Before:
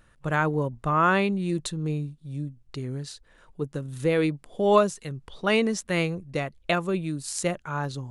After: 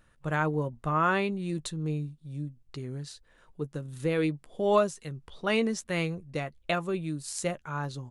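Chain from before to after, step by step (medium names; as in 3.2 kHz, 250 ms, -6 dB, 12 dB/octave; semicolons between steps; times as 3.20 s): doubling 13 ms -13 dB; trim -4.5 dB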